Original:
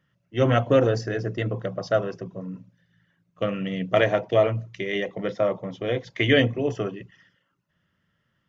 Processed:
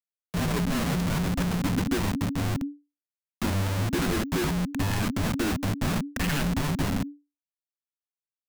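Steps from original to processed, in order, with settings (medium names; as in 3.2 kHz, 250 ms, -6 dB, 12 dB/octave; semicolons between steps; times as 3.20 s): local Wiener filter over 9 samples; Schmitt trigger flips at -35.5 dBFS; frequency shift -290 Hz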